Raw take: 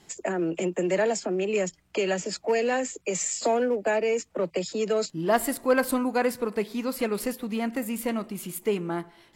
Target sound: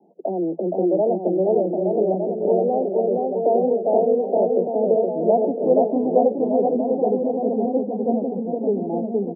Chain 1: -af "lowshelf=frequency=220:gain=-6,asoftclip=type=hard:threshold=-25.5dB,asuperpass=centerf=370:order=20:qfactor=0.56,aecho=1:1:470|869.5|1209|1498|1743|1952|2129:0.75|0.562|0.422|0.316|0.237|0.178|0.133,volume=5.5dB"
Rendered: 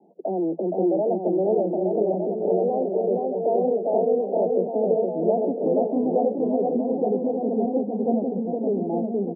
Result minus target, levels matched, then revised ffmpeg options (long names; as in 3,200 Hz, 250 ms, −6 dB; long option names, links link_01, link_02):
hard clipping: distortion +17 dB
-af "lowshelf=frequency=220:gain=-6,asoftclip=type=hard:threshold=-15.5dB,asuperpass=centerf=370:order=20:qfactor=0.56,aecho=1:1:470|869.5|1209|1498|1743|1952|2129:0.75|0.562|0.422|0.316|0.237|0.178|0.133,volume=5.5dB"